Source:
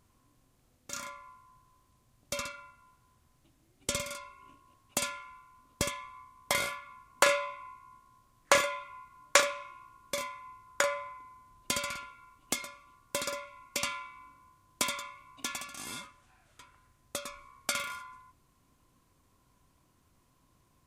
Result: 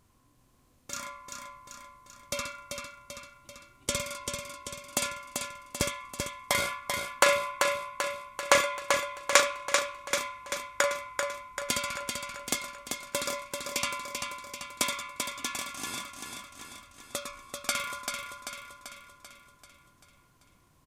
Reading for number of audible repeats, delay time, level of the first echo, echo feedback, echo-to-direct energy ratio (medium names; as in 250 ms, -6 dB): 6, 389 ms, -5.0 dB, 55%, -3.5 dB